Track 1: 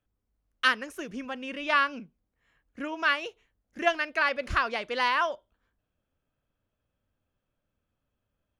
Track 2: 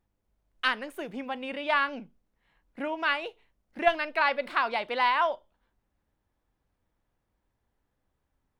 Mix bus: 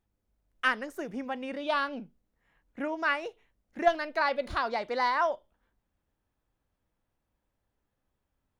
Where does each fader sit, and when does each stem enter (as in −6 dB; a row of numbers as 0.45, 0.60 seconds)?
−7.0, −3.5 decibels; 0.00, 0.00 seconds